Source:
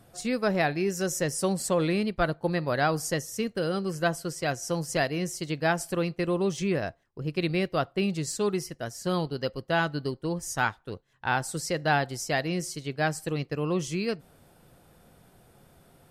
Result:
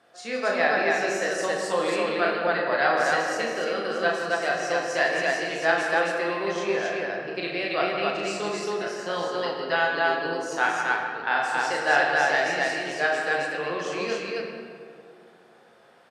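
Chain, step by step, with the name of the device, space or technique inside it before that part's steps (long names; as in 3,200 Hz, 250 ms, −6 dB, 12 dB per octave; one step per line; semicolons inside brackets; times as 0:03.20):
station announcement (band-pass filter 490–4,700 Hz; parametric band 1,700 Hz +6 dB 0.25 octaves; loudspeakers that aren't time-aligned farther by 12 metres −4 dB, 57 metres −10 dB, 94 metres −1 dB; convolution reverb RT60 2.3 s, pre-delay 13 ms, DRR 1 dB)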